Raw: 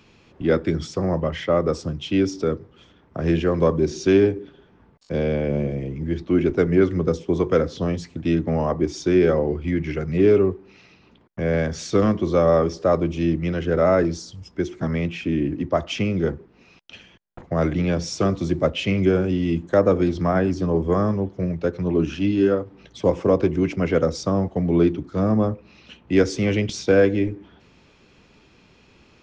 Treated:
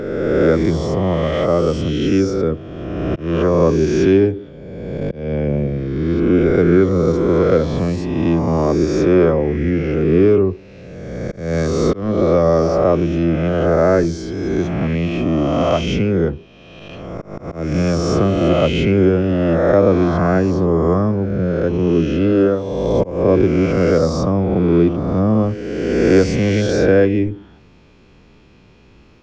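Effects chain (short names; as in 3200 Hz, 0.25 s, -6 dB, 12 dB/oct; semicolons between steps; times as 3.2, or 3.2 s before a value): spectral swells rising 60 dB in 1.90 s; auto swell 0.269 s; tilt -1.5 dB/oct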